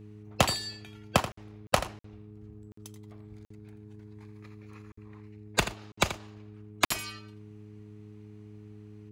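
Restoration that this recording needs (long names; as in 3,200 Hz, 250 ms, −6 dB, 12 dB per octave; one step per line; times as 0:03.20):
hum removal 105.2 Hz, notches 4
repair the gap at 0:01.32/0:01.67/0:01.99/0:02.72/0:03.45/0:04.92/0:05.92/0:06.85, 54 ms
echo removal 83 ms −12 dB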